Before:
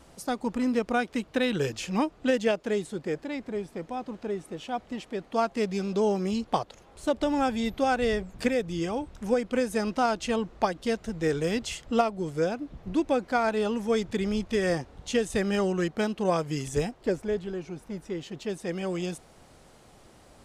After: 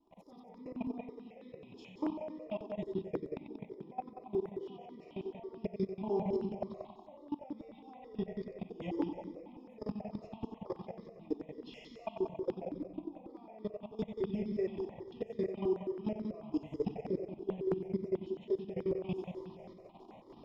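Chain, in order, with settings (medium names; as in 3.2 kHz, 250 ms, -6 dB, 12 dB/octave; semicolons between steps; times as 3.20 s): boxcar filter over 5 samples; bass shelf 130 Hz -5 dB; reverse; compression 20:1, threshold -34 dBFS, peak gain reduction 17 dB; reverse; Butterworth band-stop 1.5 kHz, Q 0.96; peaking EQ 64 Hz -10 dB 0.37 oct; de-hum 82.05 Hz, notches 9; reverberation RT60 0.60 s, pre-delay 3 ms, DRR -9 dB; level held to a coarse grid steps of 22 dB; multi-head delay 92 ms, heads first and second, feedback 49%, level -8 dB; stepped phaser 9.2 Hz 560–2700 Hz; trim -6.5 dB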